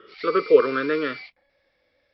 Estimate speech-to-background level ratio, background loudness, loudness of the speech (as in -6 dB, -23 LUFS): 16.5 dB, -38.0 LUFS, -21.5 LUFS